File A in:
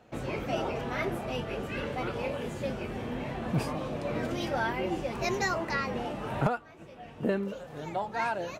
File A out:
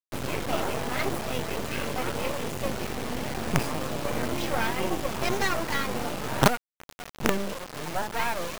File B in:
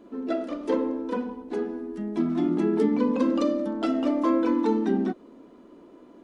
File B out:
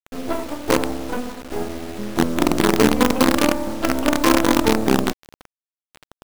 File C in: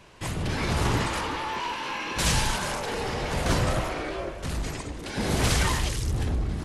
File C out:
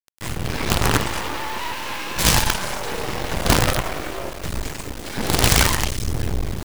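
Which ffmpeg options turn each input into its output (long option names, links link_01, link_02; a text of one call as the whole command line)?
ffmpeg -i in.wav -af "acrusher=bits=4:dc=4:mix=0:aa=0.000001,volume=7dB" out.wav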